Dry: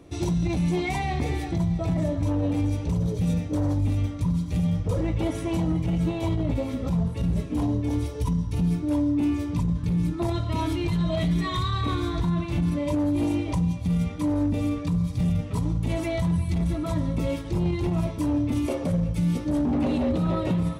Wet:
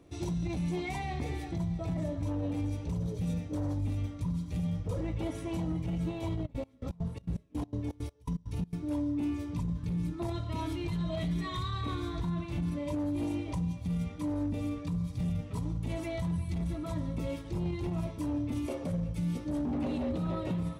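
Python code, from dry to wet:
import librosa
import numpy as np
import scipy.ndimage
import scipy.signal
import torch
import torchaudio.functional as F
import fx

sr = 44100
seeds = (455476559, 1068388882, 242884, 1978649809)

y = fx.dmg_crackle(x, sr, seeds[0], per_s=36.0, level_db=-51.0)
y = fx.step_gate(y, sr, bpm=165, pattern='x..x.xx.', floor_db=-24.0, edge_ms=4.5, at=(6.45, 8.8), fade=0.02)
y = F.gain(torch.from_numpy(y), -8.5).numpy()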